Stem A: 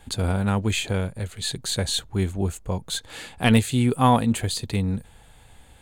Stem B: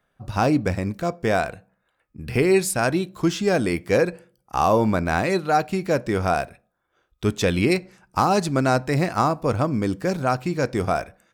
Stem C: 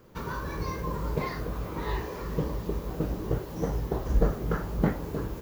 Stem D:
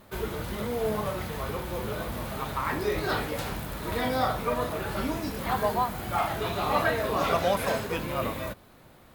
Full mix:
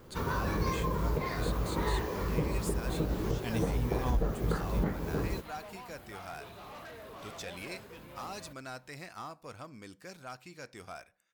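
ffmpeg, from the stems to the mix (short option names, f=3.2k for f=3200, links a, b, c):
-filter_complex "[0:a]volume=-18dB[a];[1:a]tiltshelf=f=970:g=-7.5,asoftclip=type=tanh:threshold=-14dB,volume=-20dB[b];[2:a]volume=1.5dB[c];[3:a]asoftclip=type=hard:threshold=-27.5dB,volume=-17dB[d];[a][b][c][d]amix=inputs=4:normalize=0,alimiter=limit=-20dB:level=0:latency=1:release=269"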